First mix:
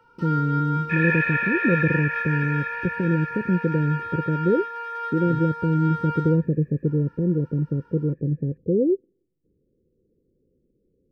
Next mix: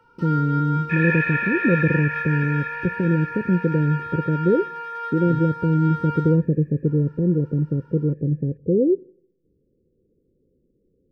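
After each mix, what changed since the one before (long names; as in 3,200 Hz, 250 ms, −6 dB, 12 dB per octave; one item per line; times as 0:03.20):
speech: send on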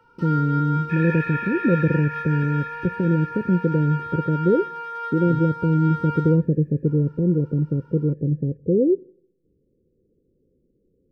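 second sound −8.5 dB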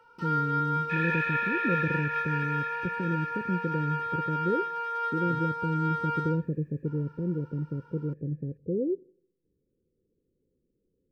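speech −10.5 dB
second sound: remove low-pass filter 2,500 Hz 24 dB per octave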